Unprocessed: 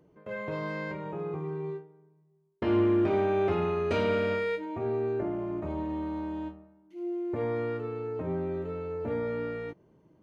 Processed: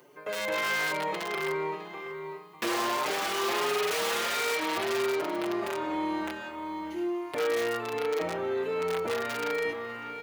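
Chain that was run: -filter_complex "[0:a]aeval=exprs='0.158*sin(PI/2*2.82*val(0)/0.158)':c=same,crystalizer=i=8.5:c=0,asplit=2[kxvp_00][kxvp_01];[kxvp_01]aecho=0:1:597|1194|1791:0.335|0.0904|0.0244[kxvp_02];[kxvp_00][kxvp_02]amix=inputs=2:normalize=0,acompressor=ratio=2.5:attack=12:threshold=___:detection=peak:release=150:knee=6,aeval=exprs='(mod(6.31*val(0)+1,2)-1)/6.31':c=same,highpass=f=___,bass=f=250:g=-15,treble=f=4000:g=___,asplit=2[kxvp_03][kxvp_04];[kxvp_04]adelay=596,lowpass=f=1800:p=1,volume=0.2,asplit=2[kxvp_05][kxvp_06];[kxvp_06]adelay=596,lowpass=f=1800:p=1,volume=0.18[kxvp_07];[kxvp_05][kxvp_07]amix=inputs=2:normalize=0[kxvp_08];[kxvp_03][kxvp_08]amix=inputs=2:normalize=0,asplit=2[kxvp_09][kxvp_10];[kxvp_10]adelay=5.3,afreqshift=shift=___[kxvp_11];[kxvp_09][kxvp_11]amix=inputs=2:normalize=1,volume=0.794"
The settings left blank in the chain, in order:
0.0794, 93, -7, 1.4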